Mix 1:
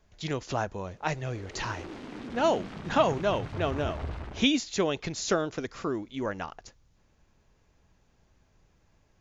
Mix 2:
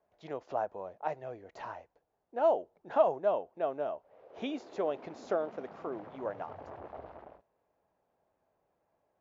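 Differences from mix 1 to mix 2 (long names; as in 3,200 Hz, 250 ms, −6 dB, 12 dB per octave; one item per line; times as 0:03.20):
background: entry +2.95 s
master: add resonant band-pass 660 Hz, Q 2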